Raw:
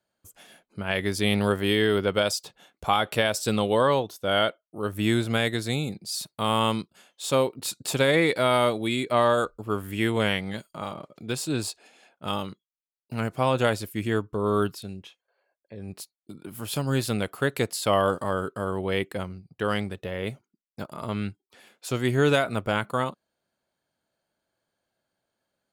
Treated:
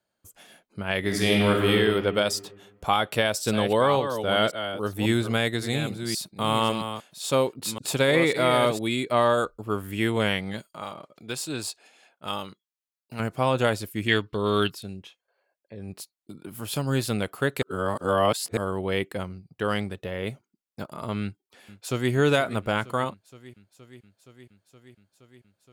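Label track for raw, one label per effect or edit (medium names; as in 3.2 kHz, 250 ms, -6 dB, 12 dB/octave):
0.990000	1.700000	reverb throw, RT60 1.7 s, DRR -1 dB
2.880000	8.790000	chunks repeated in reverse 545 ms, level -8.5 dB
10.690000	13.200000	bass shelf 440 Hz -7.5 dB
14.080000	14.700000	high-order bell 3 kHz +15.5 dB
17.620000	18.570000	reverse
21.210000	22.120000	echo throw 470 ms, feedback 80%, level -17 dB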